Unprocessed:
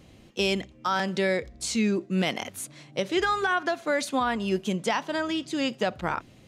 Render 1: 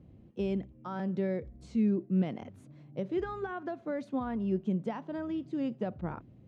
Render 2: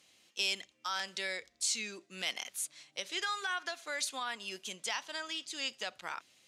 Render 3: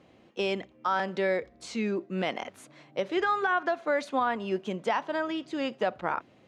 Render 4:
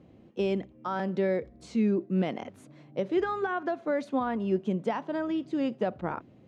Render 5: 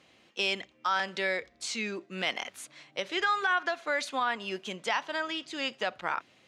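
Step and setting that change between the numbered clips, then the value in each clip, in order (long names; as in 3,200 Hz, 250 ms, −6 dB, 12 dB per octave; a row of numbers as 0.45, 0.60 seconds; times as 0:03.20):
resonant band-pass, frequency: 110, 7,200, 790, 300, 2,100 Hertz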